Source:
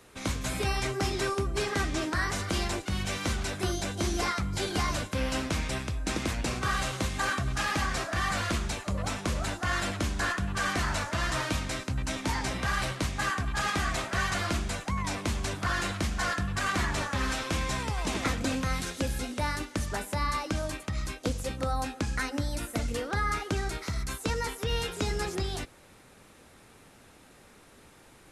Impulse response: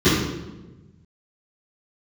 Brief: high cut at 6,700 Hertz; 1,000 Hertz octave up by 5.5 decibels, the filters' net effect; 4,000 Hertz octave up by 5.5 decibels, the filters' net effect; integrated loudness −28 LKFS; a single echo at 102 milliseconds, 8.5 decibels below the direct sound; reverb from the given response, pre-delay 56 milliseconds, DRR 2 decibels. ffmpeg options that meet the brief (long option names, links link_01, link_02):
-filter_complex "[0:a]lowpass=6700,equalizer=frequency=1000:width_type=o:gain=6.5,equalizer=frequency=4000:width_type=o:gain=7,aecho=1:1:102:0.376,asplit=2[link_01][link_02];[1:a]atrim=start_sample=2205,adelay=56[link_03];[link_02][link_03]afir=irnorm=-1:irlink=0,volume=-25dB[link_04];[link_01][link_04]amix=inputs=2:normalize=0,volume=-5dB"